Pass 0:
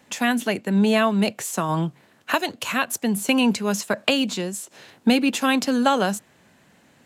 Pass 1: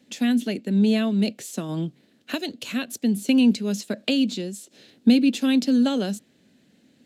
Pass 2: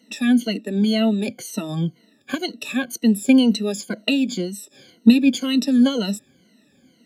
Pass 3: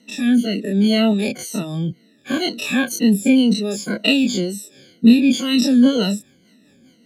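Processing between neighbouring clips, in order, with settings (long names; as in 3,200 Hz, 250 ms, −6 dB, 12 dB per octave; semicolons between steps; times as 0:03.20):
octave-band graphic EQ 250/500/1,000/4,000 Hz +12/+4/−11/+8 dB; level −9 dB
rippled gain that drifts along the octave scale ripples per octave 1.9, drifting −2 Hz, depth 24 dB; level −2 dB
every bin's largest magnitude spread in time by 60 ms; rotating-speaker cabinet horn 0.65 Hz, later 5 Hz, at 0:05.42; level +1.5 dB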